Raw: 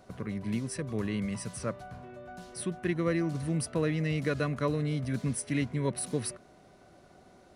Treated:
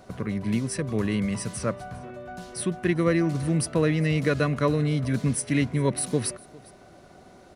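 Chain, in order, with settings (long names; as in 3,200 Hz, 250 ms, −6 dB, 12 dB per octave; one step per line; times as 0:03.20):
single-tap delay 404 ms −23.5 dB
level +6.5 dB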